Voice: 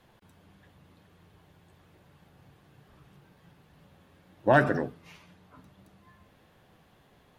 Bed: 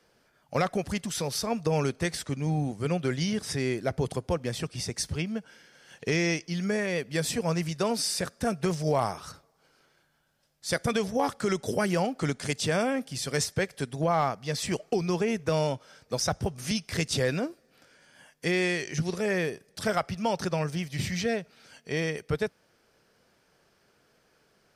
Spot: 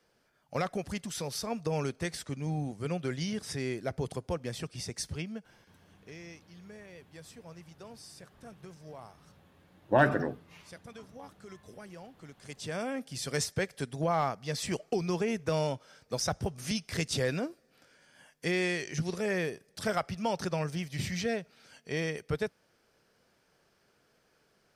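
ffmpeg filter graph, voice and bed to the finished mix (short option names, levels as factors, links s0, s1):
-filter_complex "[0:a]adelay=5450,volume=0.75[s0];[1:a]volume=4.22,afade=t=out:st=5.1:d=0.9:silence=0.158489,afade=t=in:st=12.36:d=0.91:silence=0.125893[s1];[s0][s1]amix=inputs=2:normalize=0"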